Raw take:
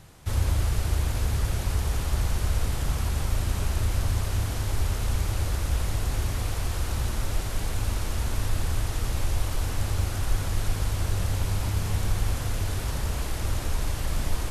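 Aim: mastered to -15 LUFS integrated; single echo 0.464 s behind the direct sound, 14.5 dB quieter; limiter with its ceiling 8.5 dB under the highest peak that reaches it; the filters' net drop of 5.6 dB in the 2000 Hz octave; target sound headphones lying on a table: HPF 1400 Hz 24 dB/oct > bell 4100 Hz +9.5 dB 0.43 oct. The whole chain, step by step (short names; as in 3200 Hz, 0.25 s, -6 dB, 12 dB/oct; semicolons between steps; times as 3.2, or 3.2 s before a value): bell 2000 Hz -7 dB; limiter -20.5 dBFS; HPF 1400 Hz 24 dB/oct; bell 4100 Hz +9.5 dB 0.43 oct; echo 0.464 s -14.5 dB; gain +23 dB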